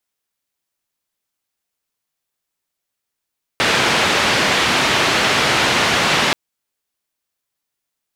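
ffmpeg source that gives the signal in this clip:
ffmpeg -f lavfi -i "anoisesrc=color=white:duration=2.73:sample_rate=44100:seed=1,highpass=frequency=97,lowpass=frequency=3100,volume=-2.9dB" out.wav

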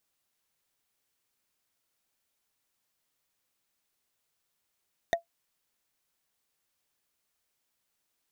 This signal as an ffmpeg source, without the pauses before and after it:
ffmpeg -f lavfi -i "aevalsrc='0.126*pow(10,-3*t/0.12)*sin(2*PI*677*t)+0.0794*pow(10,-3*t/0.036)*sin(2*PI*1866.5*t)+0.0501*pow(10,-3*t/0.016)*sin(2*PI*3658.5*t)+0.0316*pow(10,-3*t/0.009)*sin(2*PI*6047.6*t)+0.02*pow(10,-3*t/0.005)*sin(2*PI*9031.2*t)':duration=0.45:sample_rate=44100" out.wav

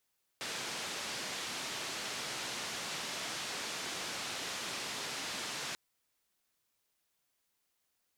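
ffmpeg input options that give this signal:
ffmpeg -f lavfi -i "anoisesrc=color=white:duration=5.34:sample_rate=44100:seed=1,highpass=frequency=130,lowpass=frequency=5600,volume=-29.4dB" out.wav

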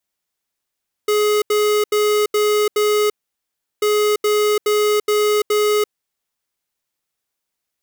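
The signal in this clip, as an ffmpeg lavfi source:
ffmpeg -f lavfi -i "aevalsrc='0.158*(2*lt(mod(420*t,1),0.5)-1)*clip(min(mod(mod(t,2.74),0.42),0.34-mod(mod(t,2.74),0.42))/0.005,0,1)*lt(mod(t,2.74),2.1)':duration=5.48:sample_rate=44100" out.wav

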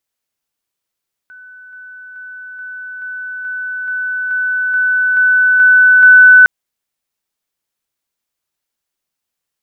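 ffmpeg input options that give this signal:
ffmpeg -f lavfi -i "aevalsrc='pow(10,(-34.5+3*floor(t/0.43))/20)*sin(2*PI*1500*t)':duration=5.16:sample_rate=44100" out.wav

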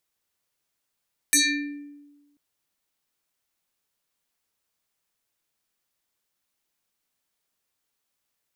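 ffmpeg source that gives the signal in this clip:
ffmpeg -f lavfi -i "aevalsrc='0.2*pow(10,-3*t/1.24)*sin(2*PI*289*t+5.8*pow(10,-3*t/0.85)*sin(2*PI*7.19*289*t))':duration=1.04:sample_rate=44100" out.wav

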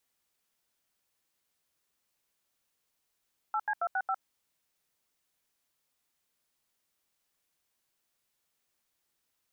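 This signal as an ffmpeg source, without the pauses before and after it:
ffmpeg -f lavfi -i "aevalsrc='0.0316*clip(min(mod(t,0.137),0.057-mod(t,0.137))/0.002,0,1)*(eq(floor(t/0.137),0)*(sin(2*PI*852*mod(t,0.137))+sin(2*PI*1336*mod(t,0.137)))+eq(floor(t/0.137),1)*(sin(2*PI*852*mod(t,0.137))+sin(2*PI*1633*mod(t,0.137)))+eq(floor(t/0.137),2)*(sin(2*PI*697*mod(t,0.137))+sin(2*PI*1336*mod(t,0.137)))+eq(floor(t/0.137),3)*(sin(2*PI*770*mod(t,0.137))+sin(2*PI*1477*mod(t,0.137)))+eq(floor(t/0.137),4)*(sin(2*PI*770*mod(t,0.137))+sin(2*PI*1336*mod(t,0.137))))':duration=0.685:sample_rate=44100" out.wav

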